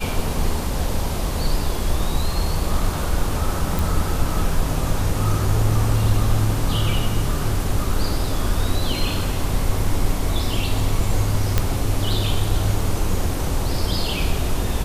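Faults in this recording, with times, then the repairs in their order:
0:03.79: click
0:11.58: click −3 dBFS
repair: click removal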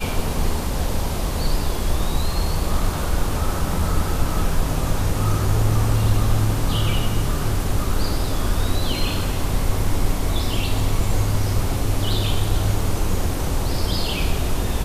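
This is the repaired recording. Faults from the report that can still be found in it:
none of them is left

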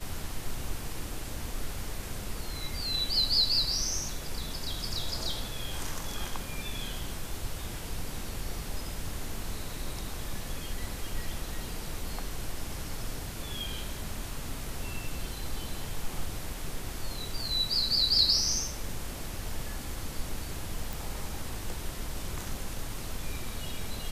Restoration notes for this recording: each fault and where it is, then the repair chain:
0:20.93: click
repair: click removal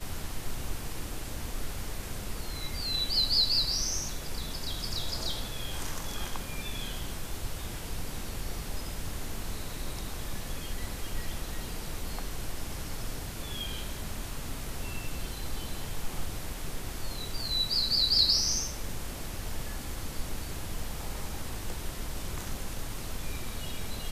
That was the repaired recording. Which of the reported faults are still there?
none of them is left

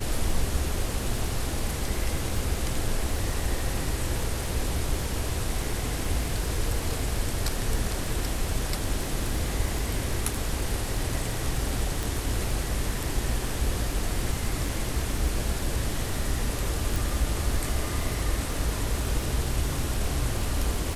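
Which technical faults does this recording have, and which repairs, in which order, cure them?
surface crackle 46 per second −32 dBFS
0:12.03: click
0:16.96: click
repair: click removal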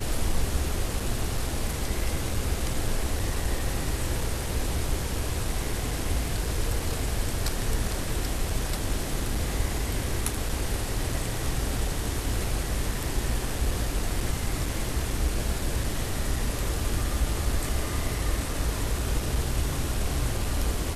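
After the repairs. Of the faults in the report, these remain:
0:16.96: click

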